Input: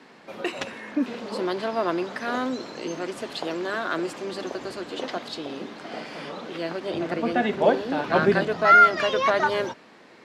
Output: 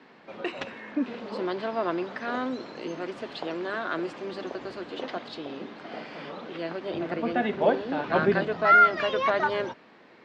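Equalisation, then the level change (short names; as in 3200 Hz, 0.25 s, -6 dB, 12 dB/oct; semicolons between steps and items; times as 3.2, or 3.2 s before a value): LPF 3900 Hz 12 dB/oct; -3.0 dB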